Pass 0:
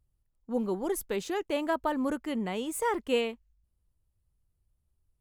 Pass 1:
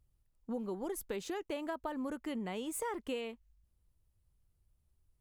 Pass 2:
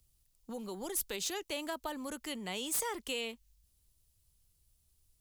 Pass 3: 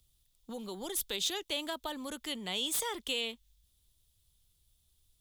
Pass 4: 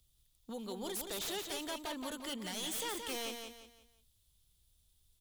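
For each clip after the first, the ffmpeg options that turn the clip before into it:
-af "acompressor=threshold=0.0141:ratio=6,volume=1.12"
-filter_complex "[0:a]acrossover=split=130|500|3200[s0][s1][s2][s3];[s1]alimiter=level_in=6.68:limit=0.0631:level=0:latency=1,volume=0.15[s4];[s3]aeval=exprs='0.0376*sin(PI/2*3.55*val(0)/0.0376)':c=same[s5];[s0][s4][s2][s5]amix=inputs=4:normalize=0"
-af "equalizer=f=3500:w=3.8:g=11.5"
-af "aeval=exprs='0.0224*(abs(mod(val(0)/0.0224+3,4)-2)-1)':c=same,aecho=1:1:174|348|522|696:0.501|0.175|0.0614|0.0215,volume=0.841"

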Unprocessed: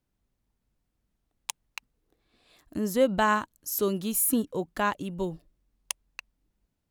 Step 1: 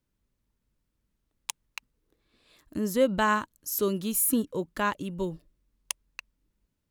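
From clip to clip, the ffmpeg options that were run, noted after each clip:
-af "equalizer=f=740:w=7.5:g=-11.5"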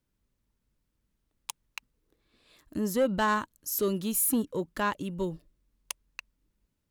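-af "asoftclip=type=tanh:threshold=0.126"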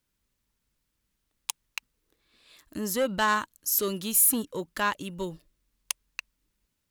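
-af "tiltshelf=f=940:g=-5,volume=1.19"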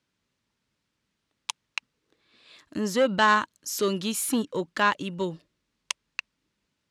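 -af "highpass=110,lowpass=5400,volume=1.68"

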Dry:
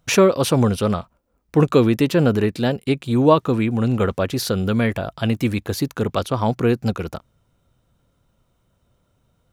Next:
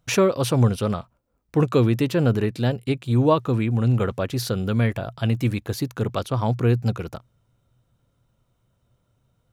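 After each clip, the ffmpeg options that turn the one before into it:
-af "equalizer=f=120:w=6.6:g=10,volume=0.596"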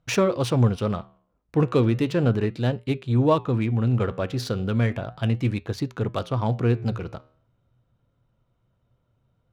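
-af "flanger=delay=6:depth=7.8:regen=-85:speed=0.35:shape=sinusoidal,adynamicsmooth=sensitivity=8:basefreq=4000,volume=1.41"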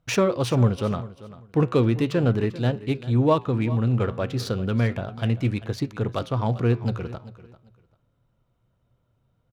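-af "aecho=1:1:393|786:0.141|0.0311"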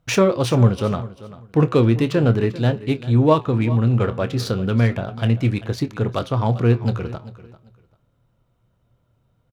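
-filter_complex "[0:a]asplit=2[s0][s1];[s1]adelay=26,volume=0.211[s2];[s0][s2]amix=inputs=2:normalize=0,volume=1.58"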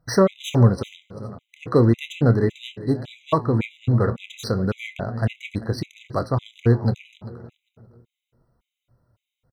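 -filter_complex "[0:a]asplit=2[s0][s1];[s1]adelay=317,lowpass=f=1100:p=1,volume=0.126,asplit=2[s2][s3];[s3]adelay=317,lowpass=f=1100:p=1,volume=0.49,asplit=2[s4][s5];[s5]adelay=317,lowpass=f=1100:p=1,volume=0.49,asplit=2[s6][s7];[s7]adelay=317,lowpass=f=1100:p=1,volume=0.49[s8];[s0][s2][s4][s6][s8]amix=inputs=5:normalize=0,afftfilt=real='re*gt(sin(2*PI*1.8*pts/sr)*(1-2*mod(floor(b*sr/1024/2000),2)),0)':imag='im*gt(sin(2*PI*1.8*pts/sr)*(1-2*mod(floor(b*sr/1024/2000),2)),0)':win_size=1024:overlap=0.75"

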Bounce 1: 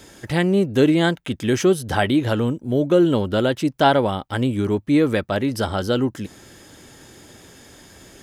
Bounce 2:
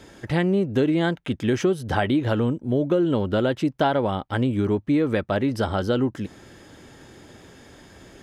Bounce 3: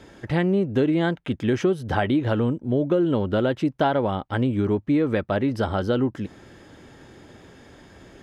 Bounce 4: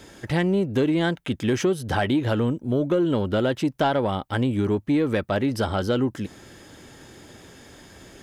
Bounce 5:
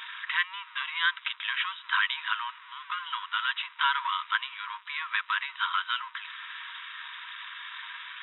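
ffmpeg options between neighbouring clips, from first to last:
-af "lowpass=f=2800:p=1,acompressor=threshold=0.141:ratio=6"
-af "highshelf=f=5200:g=-8.5"
-af "crystalizer=i=2.5:c=0,asoftclip=type=tanh:threshold=0.282"
-af "aeval=exprs='val(0)+0.5*0.015*sgn(val(0))':c=same,afftfilt=real='re*between(b*sr/4096,930,3900)':imag='im*between(b*sr/4096,930,3900)':win_size=4096:overlap=0.75,volume=1.58"

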